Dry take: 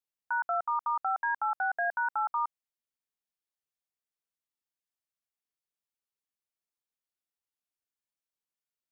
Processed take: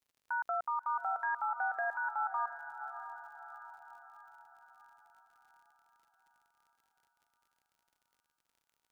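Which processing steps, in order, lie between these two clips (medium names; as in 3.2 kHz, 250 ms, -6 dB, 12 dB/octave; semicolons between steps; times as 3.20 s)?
peak limiter -29 dBFS, peak gain reduction 6.5 dB; echo that smears into a reverb 631 ms, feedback 52%, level -10 dB; crackle 65 per s -59 dBFS; trim +1.5 dB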